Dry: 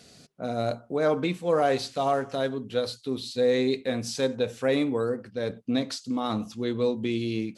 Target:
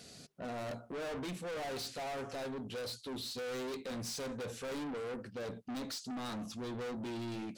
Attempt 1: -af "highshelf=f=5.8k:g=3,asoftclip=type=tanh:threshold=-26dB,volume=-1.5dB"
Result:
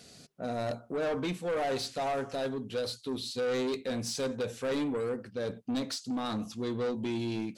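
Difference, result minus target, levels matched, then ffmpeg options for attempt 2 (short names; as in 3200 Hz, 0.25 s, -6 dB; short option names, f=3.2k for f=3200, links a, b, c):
soft clip: distortion -6 dB
-af "highshelf=f=5.8k:g=3,asoftclip=type=tanh:threshold=-37dB,volume=-1.5dB"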